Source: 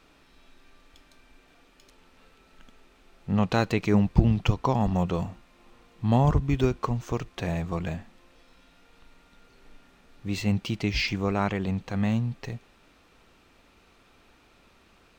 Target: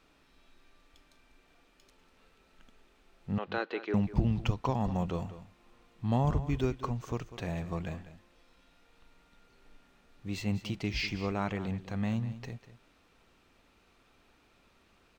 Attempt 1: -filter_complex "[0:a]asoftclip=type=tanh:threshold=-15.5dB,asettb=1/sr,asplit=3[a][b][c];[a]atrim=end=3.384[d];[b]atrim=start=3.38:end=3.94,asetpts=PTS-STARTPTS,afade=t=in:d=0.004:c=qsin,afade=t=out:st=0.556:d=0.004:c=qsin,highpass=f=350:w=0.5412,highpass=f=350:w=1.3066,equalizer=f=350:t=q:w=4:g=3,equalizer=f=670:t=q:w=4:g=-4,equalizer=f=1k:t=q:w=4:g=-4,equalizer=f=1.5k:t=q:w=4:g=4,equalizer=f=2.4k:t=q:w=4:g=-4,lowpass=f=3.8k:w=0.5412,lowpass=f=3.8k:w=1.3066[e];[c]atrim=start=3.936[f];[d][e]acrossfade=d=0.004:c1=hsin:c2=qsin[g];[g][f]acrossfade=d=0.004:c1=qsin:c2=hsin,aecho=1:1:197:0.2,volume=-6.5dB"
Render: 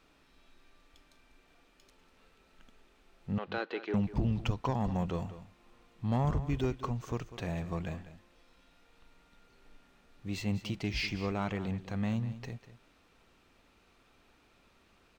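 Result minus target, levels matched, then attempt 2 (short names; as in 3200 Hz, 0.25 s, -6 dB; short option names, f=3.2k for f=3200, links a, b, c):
soft clip: distortion +10 dB
-filter_complex "[0:a]asoftclip=type=tanh:threshold=-6dB,asettb=1/sr,asplit=3[a][b][c];[a]atrim=end=3.384[d];[b]atrim=start=3.38:end=3.94,asetpts=PTS-STARTPTS,afade=t=in:d=0.004:c=qsin,afade=t=out:st=0.556:d=0.004:c=qsin,highpass=f=350:w=0.5412,highpass=f=350:w=1.3066,equalizer=f=350:t=q:w=4:g=3,equalizer=f=670:t=q:w=4:g=-4,equalizer=f=1k:t=q:w=4:g=-4,equalizer=f=1.5k:t=q:w=4:g=4,equalizer=f=2.4k:t=q:w=4:g=-4,lowpass=f=3.8k:w=0.5412,lowpass=f=3.8k:w=1.3066[e];[c]atrim=start=3.936[f];[d][e]acrossfade=d=0.004:c1=hsin:c2=qsin[g];[g][f]acrossfade=d=0.004:c1=qsin:c2=hsin,aecho=1:1:197:0.2,volume=-6.5dB"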